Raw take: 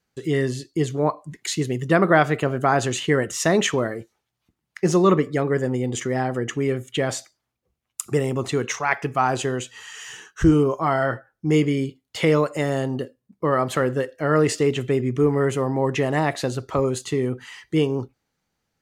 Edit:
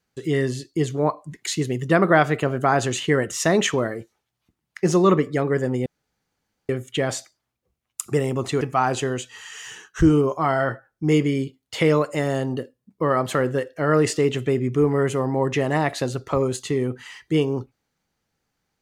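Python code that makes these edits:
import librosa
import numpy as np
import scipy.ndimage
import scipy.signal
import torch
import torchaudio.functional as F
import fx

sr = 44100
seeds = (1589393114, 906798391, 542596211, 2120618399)

y = fx.edit(x, sr, fx.room_tone_fill(start_s=5.86, length_s=0.83),
    fx.cut(start_s=8.61, length_s=0.42), tone=tone)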